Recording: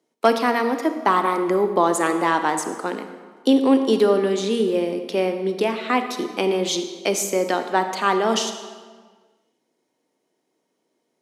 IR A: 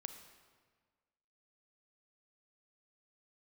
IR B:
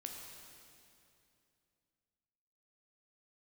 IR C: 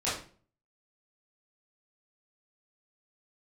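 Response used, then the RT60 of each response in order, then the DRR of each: A; 1.6 s, 2.7 s, 0.40 s; 7.5 dB, 1.0 dB, -11.0 dB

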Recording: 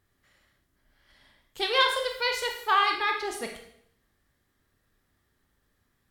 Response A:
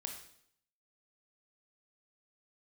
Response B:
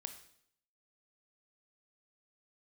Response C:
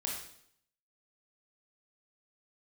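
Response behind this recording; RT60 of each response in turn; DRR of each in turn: A; 0.70 s, 0.70 s, 0.70 s; 2.5 dB, 7.0 dB, -2.5 dB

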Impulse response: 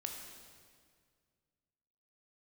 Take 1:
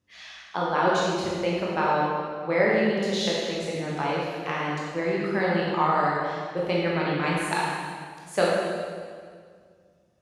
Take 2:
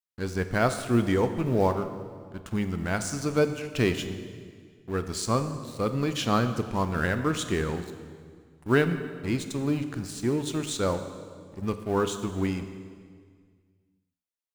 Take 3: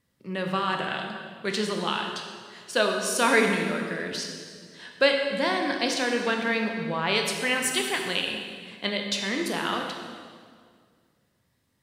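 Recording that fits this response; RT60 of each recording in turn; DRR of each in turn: 3; 2.0 s, 1.9 s, 2.0 s; -5.5 dB, 8.5 dB, 2.0 dB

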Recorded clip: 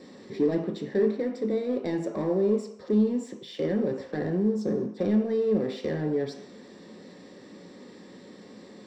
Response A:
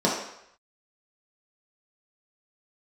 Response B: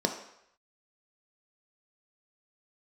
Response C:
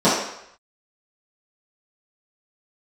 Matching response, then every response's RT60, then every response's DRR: B; 0.75 s, 0.75 s, 0.75 s; -5.5 dB, 3.5 dB, -13.5 dB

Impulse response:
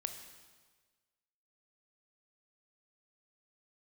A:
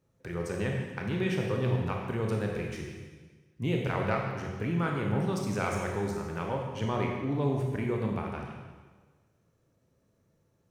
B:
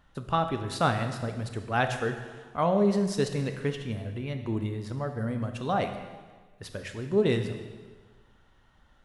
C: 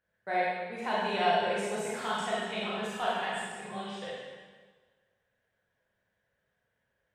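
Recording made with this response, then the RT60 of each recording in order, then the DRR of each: B; 1.4 s, 1.4 s, 1.4 s; 0.0 dB, 6.5 dB, -7.0 dB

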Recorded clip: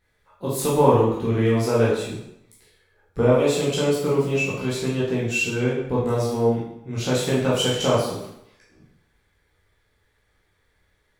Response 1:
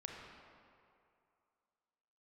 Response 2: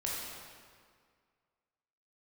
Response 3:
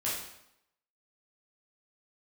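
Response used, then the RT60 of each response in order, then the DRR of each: 3; 2.5 s, 1.9 s, 0.80 s; -0.5 dB, -5.0 dB, -8.0 dB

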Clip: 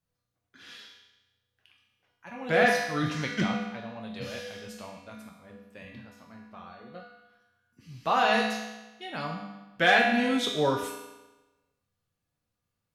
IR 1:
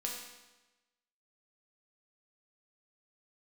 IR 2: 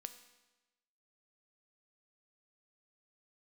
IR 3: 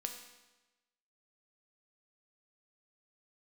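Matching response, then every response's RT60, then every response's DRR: 1; 1.1 s, 1.1 s, 1.1 s; -1.5 dB, 9.0 dB, 4.0 dB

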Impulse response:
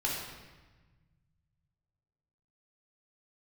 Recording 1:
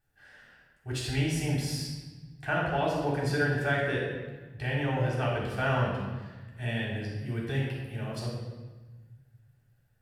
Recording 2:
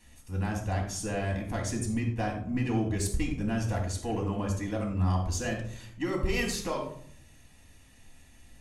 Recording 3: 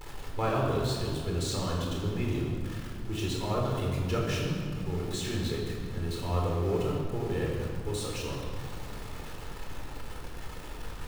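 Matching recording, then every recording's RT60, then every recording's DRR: 1; 1.3 s, 0.60 s, 2.3 s; -6.0 dB, -1.0 dB, -2.5 dB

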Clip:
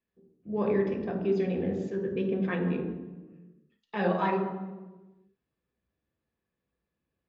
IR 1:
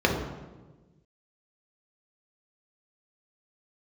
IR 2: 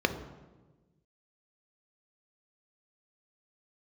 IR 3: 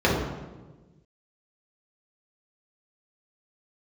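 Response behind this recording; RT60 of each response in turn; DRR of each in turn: 1; 1.3 s, 1.3 s, 1.3 s; -1.5 dB, 6.5 dB, -7.0 dB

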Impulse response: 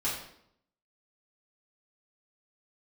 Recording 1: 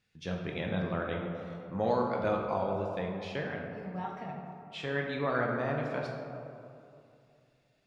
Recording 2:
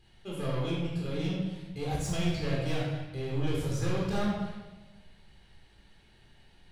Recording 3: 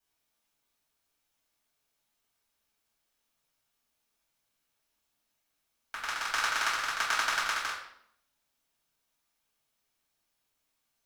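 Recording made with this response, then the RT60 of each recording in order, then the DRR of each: 3; 2.6 s, 1.1 s, 0.70 s; 0.0 dB, -5.0 dB, -8.0 dB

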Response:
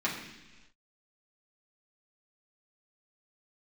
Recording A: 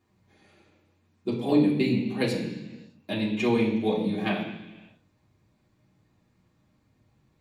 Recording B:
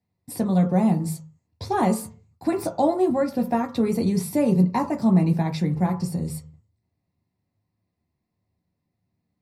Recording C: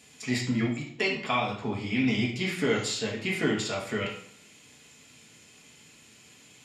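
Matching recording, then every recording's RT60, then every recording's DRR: A; no single decay rate, 0.45 s, 0.65 s; -6.5 dB, 2.0 dB, -2.5 dB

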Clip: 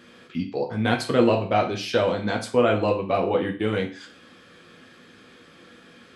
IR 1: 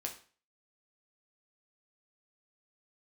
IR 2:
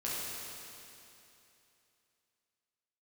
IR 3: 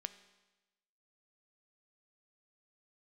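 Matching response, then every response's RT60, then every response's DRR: 1; 0.40 s, 2.9 s, 1.1 s; 1.5 dB, -8.0 dB, 11.0 dB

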